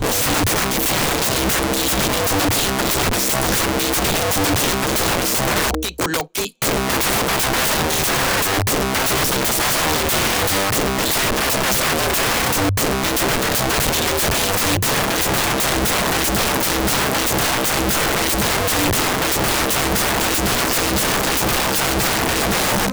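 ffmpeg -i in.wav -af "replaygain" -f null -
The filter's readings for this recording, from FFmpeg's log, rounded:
track_gain = +1.8 dB
track_peak = 0.151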